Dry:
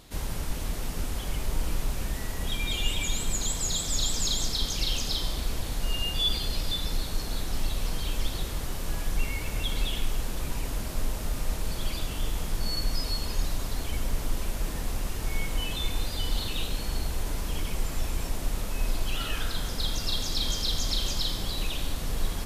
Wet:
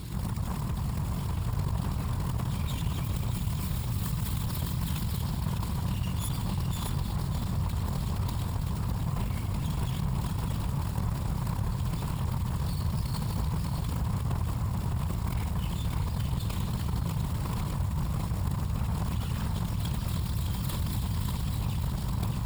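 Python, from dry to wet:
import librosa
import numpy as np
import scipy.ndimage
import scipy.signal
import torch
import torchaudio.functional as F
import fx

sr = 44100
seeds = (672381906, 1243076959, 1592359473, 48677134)

y = fx.tracing_dist(x, sr, depth_ms=0.32)
y = fx.tone_stack(y, sr, knobs='10-0-1')
y = fx.quant_float(y, sr, bits=2)
y = fx.whisperise(y, sr, seeds[0])
y = scipy.signal.sosfilt(scipy.signal.butter(2, 56.0, 'highpass', fs=sr, output='sos'), y)
y = fx.peak_eq(y, sr, hz=1000.0, db=13.0, octaves=0.63)
y = fx.notch(y, sr, hz=6100.0, q=6.1)
y = y + 10.0 ** (-5.5 / 20.0) * np.pad(y, (int(608 * sr / 1000.0), 0))[:len(y)]
y = fx.env_flatten(y, sr, amount_pct=70)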